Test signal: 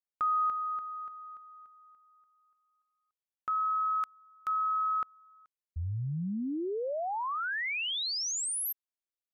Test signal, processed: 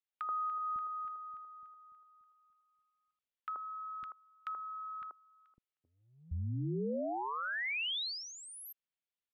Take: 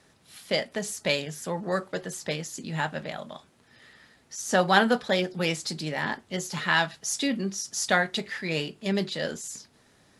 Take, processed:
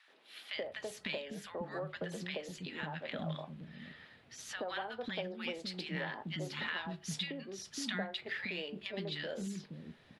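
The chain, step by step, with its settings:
high shelf with overshoot 4,700 Hz −13 dB, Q 1.5
downward compressor 10 to 1, threshold −33 dBFS
three-band delay without the direct sound highs, mids, lows 80/550 ms, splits 290/1,100 Hz
level −1 dB

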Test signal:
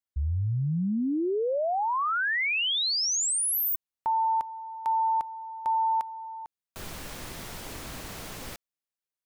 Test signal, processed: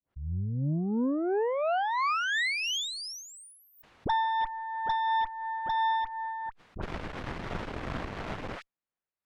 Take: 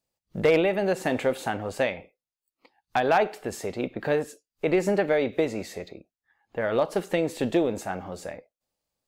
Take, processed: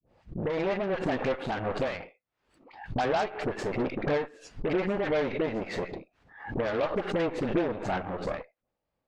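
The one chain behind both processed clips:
fade in at the beginning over 1.00 s
low-pass filter 2,000 Hz 12 dB per octave
all-pass dispersion highs, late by 65 ms, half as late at 800 Hz
downward compressor 2.5 to 1, threshold −34 dBFS
harmonic generator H 5 −45 dB, 7 −44 dB, 8 −18 dB, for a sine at −21.5 dBFS
amplitude tremolo 2.9 Hz, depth 31%
background raised ahead of every attack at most 100 dB per second
level +5.5 dB

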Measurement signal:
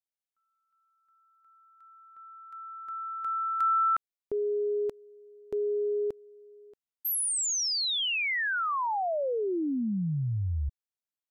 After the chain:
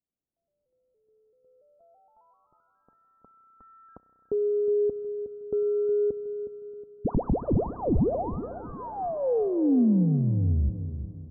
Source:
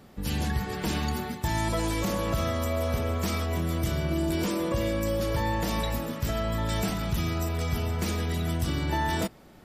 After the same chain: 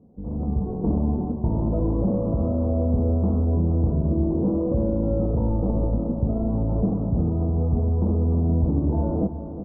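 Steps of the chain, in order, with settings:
high-pass filter 53 Hz
comb filter 4.1 ms, depth 32%
automatic gain control gain up to 8 dB
sample-and-hold swept by an LFO 19×, swing 60% 0.22 Hz
Gaussian smoothing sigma 14 samples
repeating echo 365 ms, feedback 42%, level −11 dB
spring reverb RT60 3.8 s, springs 32 ms, chirp 65 ms, DRR 15 dB

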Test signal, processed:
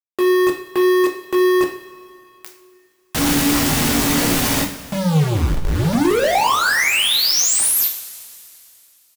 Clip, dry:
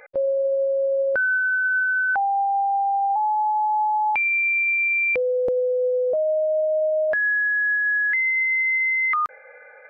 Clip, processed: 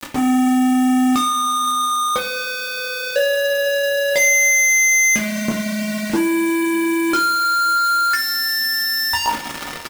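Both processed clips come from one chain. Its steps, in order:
ambience of single reflections 17 ms −6.5 dB, 29 ms −12 dB
brickwall limiter −18 dBFS
dynamic equaliser 940 Hz, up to +5 dB, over −37 dBFS, Q 2.1
frequency shifter −290 Hz
log-companded quantiser 2 bits
coupled-rooms reverb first 0.46 s, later 2.8 s, from −17 dB, DRR 2 dB
level +6.5 dB

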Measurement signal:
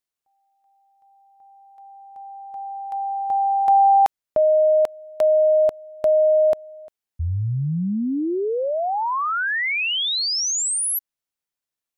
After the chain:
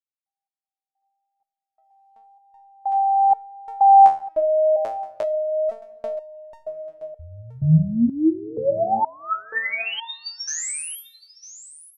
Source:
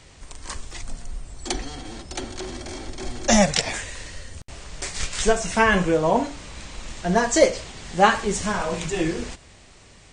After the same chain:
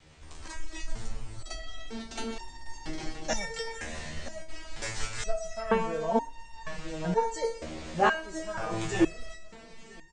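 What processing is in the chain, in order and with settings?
noise gate with hold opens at −45 dBFS, hold 365 ms, range −21 dB
dynamic equaliser 3,400 Hz, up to −5 dB, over −39 dBFS, Q 1.1
automatic gain control gain up to 11 dB
pitch vibrato 0.91 Hz 10 cents
high-frequency loss of the air 60 metres
single-tap delay 972 ms −17.5 dB
rectangular room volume 4,000 cubic metres, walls mixed, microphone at 0.42 metres
step-sequenced resonator 2.1 Hz 78–920 Hz
level +1.5 dB

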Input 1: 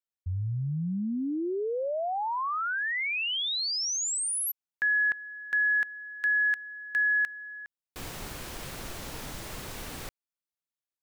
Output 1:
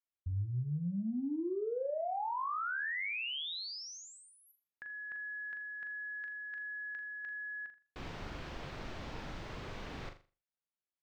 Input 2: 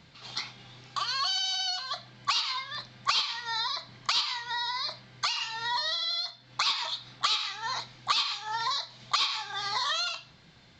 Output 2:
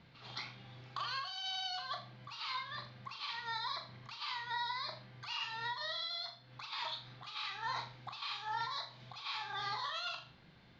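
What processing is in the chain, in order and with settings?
compressor whose output falls as the input rises −31 dBFS, ratio −0.5
high-frequency loss of the air 200 metres
flutter between parallel walls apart 7 metres, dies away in 0.33 s
level −6 dB

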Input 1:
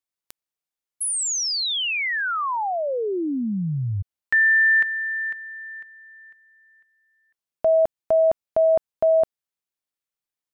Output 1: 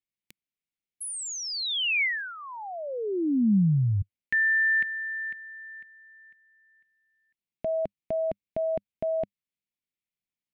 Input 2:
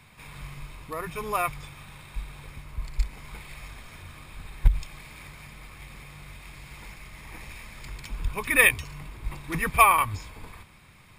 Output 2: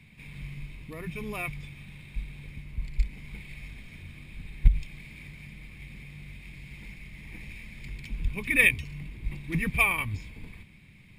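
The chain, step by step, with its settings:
drawn EQ curve 100 Hz 0 dB, 200 Hz +5 dB, 560 Hz −9 dB, 1,300 Hz −17 dB, 2,200 Hz +1 dB, 5,800 Hz −10 dB

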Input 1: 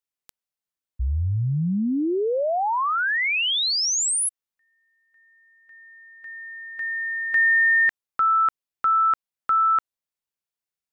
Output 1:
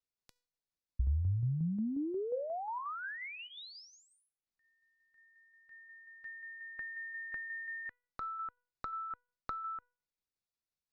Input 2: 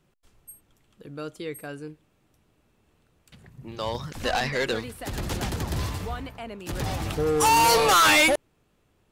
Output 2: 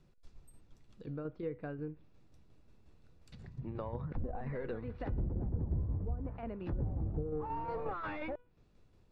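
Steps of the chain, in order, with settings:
downward compressor 8 to 1, threshold −32 dBFS
soft clipping −17.5 dBFS
treble cut that deepens with the level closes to 2,000 Hz, closed at −36 dBFS
spectral tilt −2.5 dB per octave
treble cut that deepens with the level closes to 490 Hz, closed at −25 dBFS
parametric band 4,700 Hz +9 dB 1.2 octaves
notch filter 3,100 Hz, Q 11
tuned comb filter 490 Hz, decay 0.45 s, mix 60%
shaped tremolo saw down 5.6 Hz, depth 45%
level +3 dB

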